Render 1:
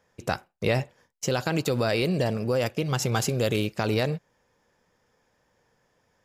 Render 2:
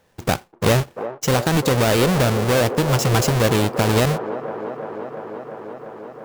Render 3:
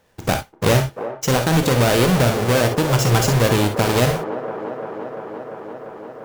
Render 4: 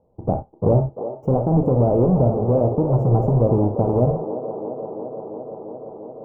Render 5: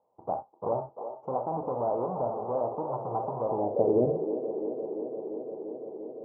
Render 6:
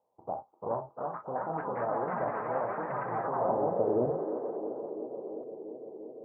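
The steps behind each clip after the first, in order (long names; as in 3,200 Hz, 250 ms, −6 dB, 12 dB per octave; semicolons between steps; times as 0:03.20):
each half-wave held at its own peak; delay with a band-pass on its return 345 ms, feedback 81%, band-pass 630 Hz, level −9 dB; level +3 dB
reverb whose tail is shaped and stops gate 80 ms rising, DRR 6 dB
inverse Chebyshev low-pass filter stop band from 1,600 Hz, stop band 40 dB
band-pass filter sweep 1,000 Hz → 370 Hz, 0:03.46–0:03.96
delay with pitch and tempo change per echo 480 ms, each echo +4 semitones, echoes 3; level −4.5 dB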